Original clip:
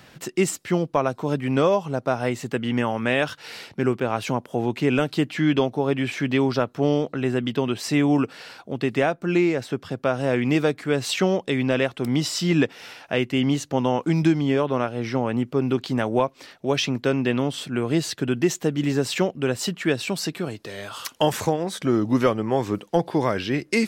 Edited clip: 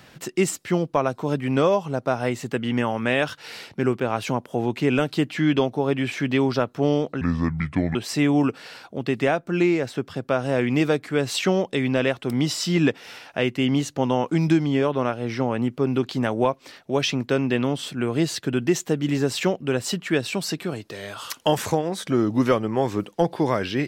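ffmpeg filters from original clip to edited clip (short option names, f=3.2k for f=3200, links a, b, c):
-filter_complex "[0:a]asplit=3[a][b][c];[a]atrim=end=7.214[d];[b]atrim=start=7.21:end=7.7,asetpts=PTS-STARTPTS,asetrate=29106,aresample=44100[e];[c]atrim=start=7.696[f];[d][e]acrossfade=d=0.004:c1=hsin:c2=hsin[g];[g][f]acrossfade=d=0.004:c1=hsin:c2=hsin"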